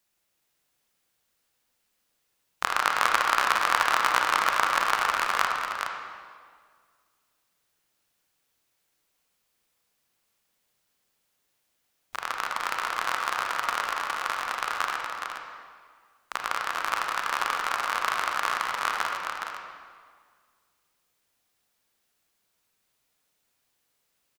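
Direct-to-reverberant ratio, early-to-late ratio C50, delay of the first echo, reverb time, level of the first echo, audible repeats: 0.0 dB, 0.5 dB, 417 ms, 1.8 s, -6.0 dB, 1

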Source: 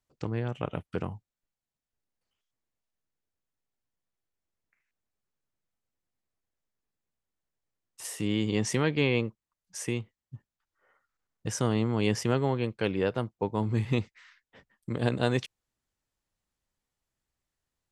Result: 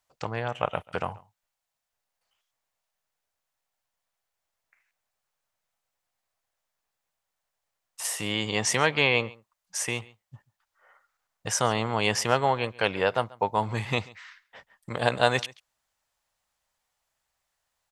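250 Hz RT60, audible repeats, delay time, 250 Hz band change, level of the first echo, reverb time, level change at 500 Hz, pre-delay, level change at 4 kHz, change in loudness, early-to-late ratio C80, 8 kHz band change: no reverb, 1, 137 ms, -5.0 dB, -22.5 dB, no reverb, +2.5 dB, no reverb, +8.0 dB, +3.0 dB, no reverb, +8.0 dB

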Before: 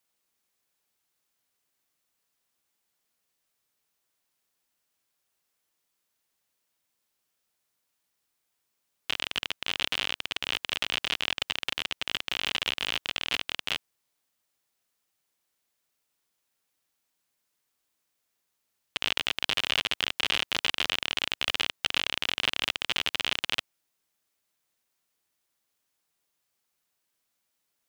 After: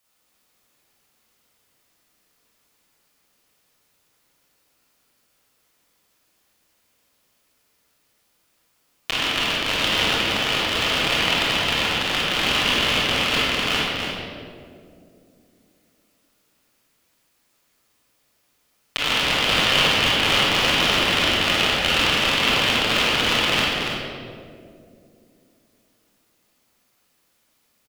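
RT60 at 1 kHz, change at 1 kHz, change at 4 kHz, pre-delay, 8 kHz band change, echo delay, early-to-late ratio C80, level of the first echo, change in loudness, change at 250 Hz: 2.0 s, +14.5 dB, +9.5 dB, 23 ms, +11.0 dB, 285 ms, -2.0 dB, -5.5 dB, +10.0 dB, +18.5 dB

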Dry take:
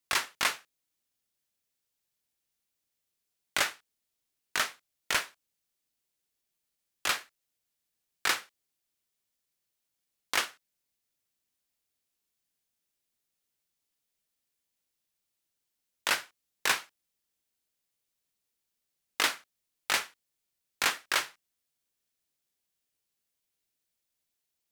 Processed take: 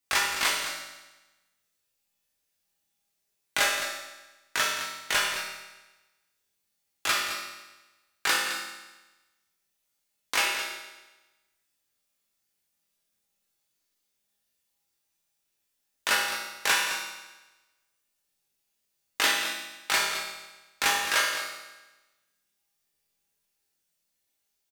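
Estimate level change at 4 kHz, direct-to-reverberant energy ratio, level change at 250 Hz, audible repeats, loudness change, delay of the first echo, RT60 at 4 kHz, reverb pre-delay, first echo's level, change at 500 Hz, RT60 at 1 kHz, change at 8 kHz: +5.0 dB, -4.0 dB, +4.0 dB, 1, +3.5 dB, 213 ms, 1.1 s, 5 ms, -11.0 dB, +5.5 dB, 1.1 s, +5.0 dB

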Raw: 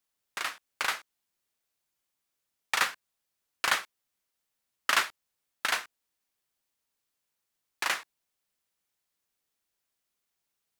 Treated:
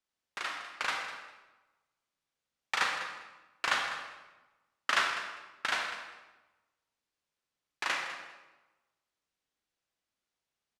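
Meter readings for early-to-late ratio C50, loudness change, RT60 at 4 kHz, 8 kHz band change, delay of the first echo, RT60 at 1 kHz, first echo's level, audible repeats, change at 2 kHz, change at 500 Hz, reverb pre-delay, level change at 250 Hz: 3.0 dB, -3.0 dB, 0.90 s, -7.0 dB, 200 ms, 1.1 s, -13.0 dB, 2, -1.5 dB, -0.5 dB, 32 ms, -0.5 dB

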